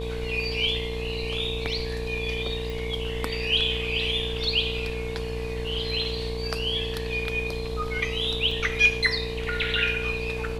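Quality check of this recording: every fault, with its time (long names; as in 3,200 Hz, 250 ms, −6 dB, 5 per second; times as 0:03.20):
mains buzz 60 Hz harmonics 19 −33 dBFS
whistle 450 Hz −32 dBFS
0:02.70: click
0:08.51: drop-out 4.4 ms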